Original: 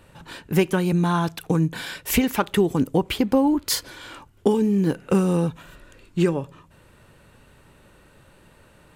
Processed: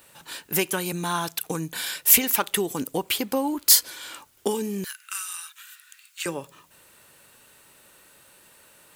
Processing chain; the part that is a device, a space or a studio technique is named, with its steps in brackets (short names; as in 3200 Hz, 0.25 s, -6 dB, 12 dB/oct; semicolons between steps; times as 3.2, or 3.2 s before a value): turntable without a phono preamp (RIAA curve recording; white noise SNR 37 dB); 4.84–6.26 steep high-pass 1300 Hz 36 dB/oct; gain -2.5 dB